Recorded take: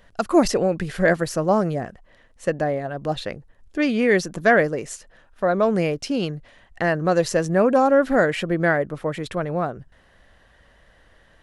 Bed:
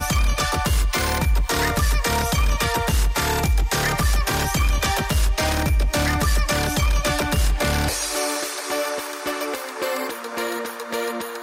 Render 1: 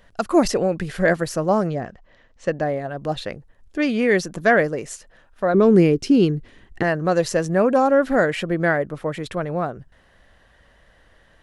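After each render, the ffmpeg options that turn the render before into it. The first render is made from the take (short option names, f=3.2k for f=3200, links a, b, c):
-filter_complex "[0:a]asettb=1/sr,asplit=3[a][b][c];[a]atrim=end=1.674[d];[b]atrim=start=1.67:end=2.62,asetpts=PTS-STARTPTS,afade=t=in:d=0.004:c=qsin,afade=t=out:st=0.946:d=0.004:c=qsin,lowpass=f=6.7k:w=0.5412,lowpass=f=6.7k:w=1.3066[e];[c]atrim=start=2.616[f];[d][e]acrossfade=d=0.004:c1=hsin:c2=qsin[g];[g][f]acrossfade=d=0.004:c1=qsin:c2=hsin,asettb=1/sr,asplit=3[h][i][j];[h]atrim=end=5.544[k];[i]atrim=start=5.54:end=6.83,asetpts=PTS-STARTPTS,afade=t=in:d=0.004:c=qsin,afade=t=out:st=1.286:d=0.004:c=qsin,lowshelf=f=480:t=q:w=3:g=6.5[l];[j]atrim=start=6.826[m];[k][l]acrossfade=d=0.004:c1=hsin:c2=qsin[n];[n][m]acrossfade=d=0.004:c1=qsin:c2=hsin"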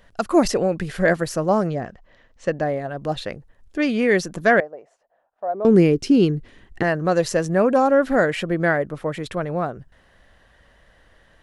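-filter_complex "[0:a]asettb=1/sr,asplit=3[a][b][c];[a]atrim=end=4.604[d];[b]atrim=start=4.6:end=5.65,asetpts=PTS-STARTPTS,afade=t=in:d=0.004:c=qsin,afade=t=out:st=1.046:d=0.004:c=qsin,bandpass=f=710:t=q:w=4.6[e];[c]atrim=start=5.646[f];[d][e]acrossfade=d=0.004:c1=hsin:c2=qsin[g];[g][f]acrossfade=d=0.004:c1=qsin:c2=hsin"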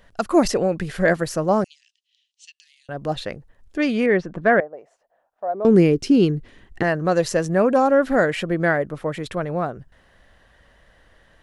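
-filter_complex "[0:a]asettb=1/sr,asplit=3[a][b][c];[a]atrim=end=1.644[d];[b]atrim=start=1.64:end=2.89,asetpts=PTS-STARTPTS,afade=t=in:d=0.004:c=qsin,afade=t=out:st=1.246:d=0.004:c=qsin,asuperpass=centerf=5500:order=12:qfactor=0.76[e];[c]atrim=start=2.886[f];[d][e]acrossfade=d=0.004:c1=hsin:c2=qsin[g];[g][f]acrossfade=d=0.004:c1=qsin:c2=hsin,asettb=1/sr,asplit=3[h][i][j];[h]atrim=end=4.064[k];[i]atrim=start=4.06:end=4.74,asetpts=PTS-STARTPTS,afade=t=in:d=0.004:c=qsin,afade=t=out:st=0.676:d=0.004:c=qsin,lowpass=2k[l];[j]atrim=start=4.736[m];[k][l]acrossfade=d=0.004:c1=hsin:c2=qsin[n];[n][m]acrossfade=d=0.004:c1=qsin:c2=hsin"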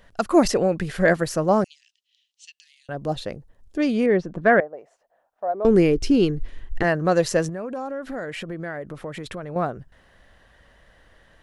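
-filter_complex "[0:a]asettb=1/sr,asplit=3[a][b][c];[a]atrim=end=2.954[d];[b]atrim=start=2.95:end=4.39,asetpts=PTS-STARTPTS,afade=t=in:d=0.004:c=qsin,afade=t=out:st=1.436:d=0.004:c=qsin,equalizer=f=1.9k:t=o:w=1.7:g=-7[e];[c]atrim=start=4.386[f];[d][e]acrossfade=d=0.004:c1=hsin:c2=qsin[g];[g][f]acrossfade=d=0.004:c1=qsin:c2=hsin,asplit=3[h][i][j];[h]afade=t=out:st=5.51:d=0.02[k];[i]asubboost=boost=10:cutoff=51,afade=t=in:st=5.51:d=0.02,afade=t=out:st=6.83:d=0.02[l];[j]afade=t=in:st=6.83:d=0.02[m];[k][l][m]amix=inputs=3:normalize=0,asettb=1/sr,asplit=3[n][o][p];[n]atrim=end=7.494[q];[o]atrim=start=7.49:end=9.56,asetpts=PTS-STARTPTS,afade=t=in:d=0.004:c=qsin,afade=t=out:st=2.066:d=0.004:c=qsin,acompressor=threshold=-30dB:ratio=4:attack=3.2:release=140:knee=1:detection=peak[r];[p]atrim=start=9.556[s];[q][r]acrossfade=d=0.004:c1=hsin:c2=qsin[t];[t][s]acrossfade=d=0.004:c1=qsin:c2=hsin"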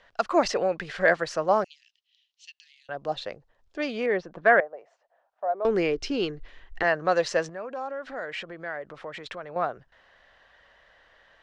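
-filter_complex "[0:a]lowpass=8k,acrossover=split=490 6300:gain=0.178 1 0.0891[a][b][c];[a][b][c]amix=inputs=3:normalize=0"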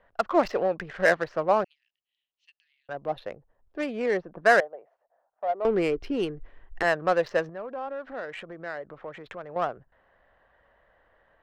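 -af "adynamicsmooth=sensitivity=2:basefreq=1.4k"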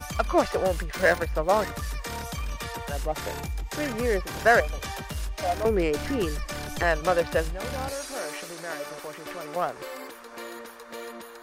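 -filter_complex "[1:a]volume=-13dB[a];[0:a][a]amix=inputs=2:normalize=0"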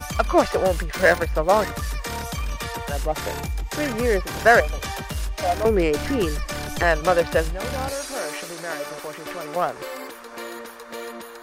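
-af "volume=4.5dB"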